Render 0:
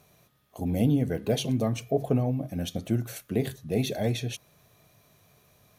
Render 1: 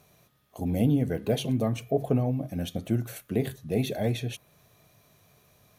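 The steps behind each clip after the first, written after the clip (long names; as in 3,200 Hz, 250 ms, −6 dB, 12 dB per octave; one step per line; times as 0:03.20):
dynamic equaliser 5,500 Hz, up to −6 dB, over −52 dBFS, Q 1.3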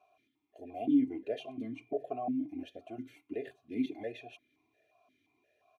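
comb filter 2.9 ms, depth 82%
formant filter that steps through the vowels 5.7 Hz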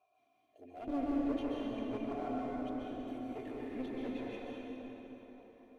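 asymmetric clip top −38 dBFS
dense smooth reverb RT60 4.6 s, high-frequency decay 0.6×, pre-delay 115 ms, DRR −6 dB
level −7 dB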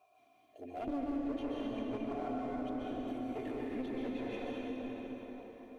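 downward compressor 3 to 1, threshold −44 dBFS, peak gain reduction 11 dB
level +7 dB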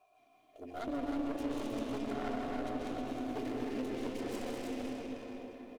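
stylus tracing distortion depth 0.34 ms
single-tap delay 314 ms −5.5 dB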